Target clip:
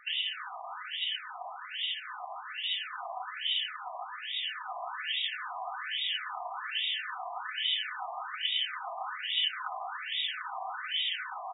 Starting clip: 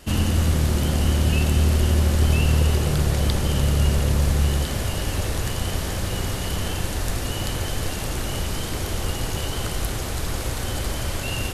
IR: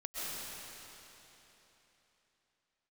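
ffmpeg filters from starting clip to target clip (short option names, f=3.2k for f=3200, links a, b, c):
-af "highpass=120,aecho=1:1:4:0.53,acompressor=threshold=-25dB:ratio=6,aexciter=amount=4.6:drive=7.8:freq=3.4k,afftfilt=real='re*between(b*sr/1024,850*pow(2700/850,0.5+0.5*sin(2*PI*1.2*pts/sr))/1.41,850*pow(2700/850,0.5+0.5*sin(2*PI*1.2*pts/sr))*1.41)':imag='im*between(b*sr/1024,850*pow(2700/850,0.5+0.5*sin(2*PI*1.2*pts/sr))/1.41,850*pow(2700/850,0.5+0.5*sin(2*PI*1.2*pts/sr))*1.41)':win_size=1024:overlap=0.75,volume=2dB"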